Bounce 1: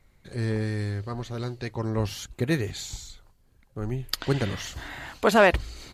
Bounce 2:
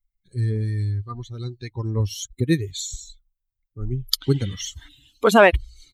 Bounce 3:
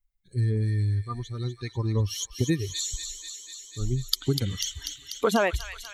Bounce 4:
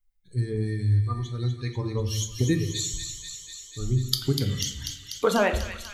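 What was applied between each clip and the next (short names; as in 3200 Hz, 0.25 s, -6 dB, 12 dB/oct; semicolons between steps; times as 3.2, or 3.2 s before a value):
per-bin expansion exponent 2; in parallel at +2 dB: compressor, threshold -33 dBFS, peak gain reduction 17 dB; on the sum: spectral gain 4.88–5.18, 360–2400 Hz -27 dB; gain +5 dB
compressor 6:1, threshold -20 dBFS, peak gain reduction 11.5 dB; thin delay 0.245 s, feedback 75%, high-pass 2100 Hz, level -6.5 dB
reverb RT60 0.75 s, pre-delay 6 ms, DRR 5.5 dB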